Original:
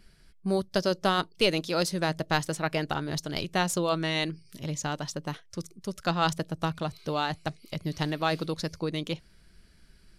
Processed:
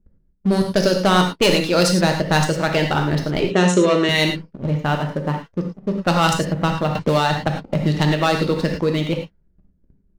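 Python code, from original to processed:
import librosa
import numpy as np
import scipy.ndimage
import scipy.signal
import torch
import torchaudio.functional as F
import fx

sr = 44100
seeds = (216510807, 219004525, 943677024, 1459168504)

y = fx.env_lowpass(x, sr, base_hz=380.0, full_db=-21.5)
y = fx.leveller(y, sr, passes=3)
y = fx.cabinet(y, sr, low_hz=170.0, low_slope=12, high_hz=8100.0, hz=(400.0, 830.0, 4800.0), db=(10, -8, -10), at=(3.4, 4.09))
y = fx.rev_gated(y, sr, seeds[0], gate_ms=130, shape='flat', drr_db=2.5)
y = fx.band_squash(y, sr, depth_pct=70, at=(6.95, 8.81))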